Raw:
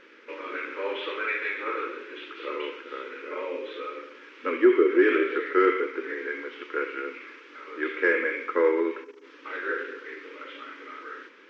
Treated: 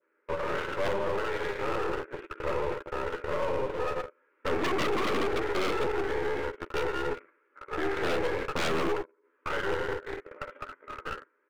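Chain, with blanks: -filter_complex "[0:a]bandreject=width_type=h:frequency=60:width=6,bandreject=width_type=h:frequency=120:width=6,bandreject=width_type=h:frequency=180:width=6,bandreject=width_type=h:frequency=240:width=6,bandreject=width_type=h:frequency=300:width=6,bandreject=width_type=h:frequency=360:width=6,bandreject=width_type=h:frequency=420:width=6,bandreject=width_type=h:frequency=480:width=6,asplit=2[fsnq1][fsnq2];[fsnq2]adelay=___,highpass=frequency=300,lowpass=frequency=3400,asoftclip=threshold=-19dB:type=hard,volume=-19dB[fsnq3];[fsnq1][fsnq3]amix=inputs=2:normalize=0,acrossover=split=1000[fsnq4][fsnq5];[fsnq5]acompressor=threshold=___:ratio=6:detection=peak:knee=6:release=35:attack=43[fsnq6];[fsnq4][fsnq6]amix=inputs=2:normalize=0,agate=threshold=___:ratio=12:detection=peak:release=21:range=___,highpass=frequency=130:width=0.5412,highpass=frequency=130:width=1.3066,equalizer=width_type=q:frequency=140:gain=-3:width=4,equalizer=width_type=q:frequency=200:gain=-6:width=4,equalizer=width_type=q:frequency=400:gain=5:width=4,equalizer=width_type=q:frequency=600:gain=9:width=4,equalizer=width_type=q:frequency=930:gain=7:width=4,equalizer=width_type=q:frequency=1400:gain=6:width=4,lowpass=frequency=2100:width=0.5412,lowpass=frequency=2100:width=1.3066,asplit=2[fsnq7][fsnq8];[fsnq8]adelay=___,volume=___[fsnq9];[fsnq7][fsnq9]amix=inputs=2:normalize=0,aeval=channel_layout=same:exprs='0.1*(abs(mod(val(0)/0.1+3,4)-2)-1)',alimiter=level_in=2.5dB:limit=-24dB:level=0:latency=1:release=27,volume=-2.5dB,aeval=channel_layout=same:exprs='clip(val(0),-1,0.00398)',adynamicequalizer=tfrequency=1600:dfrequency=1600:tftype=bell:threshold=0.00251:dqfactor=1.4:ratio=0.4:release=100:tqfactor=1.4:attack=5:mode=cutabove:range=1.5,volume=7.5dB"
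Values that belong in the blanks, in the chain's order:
180, -47dB, -44dB, -32dB, 12, -6dB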